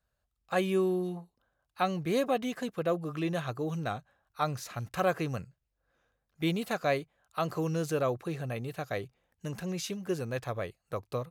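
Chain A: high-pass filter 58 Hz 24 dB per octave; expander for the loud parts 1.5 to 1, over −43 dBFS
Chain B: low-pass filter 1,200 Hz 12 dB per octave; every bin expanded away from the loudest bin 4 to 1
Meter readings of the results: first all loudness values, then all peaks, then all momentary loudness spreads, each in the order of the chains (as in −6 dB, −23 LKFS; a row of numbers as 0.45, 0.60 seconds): −35.5, −38.0 LKFS; −14.5, −17.5 dBFS; 12, 23 LU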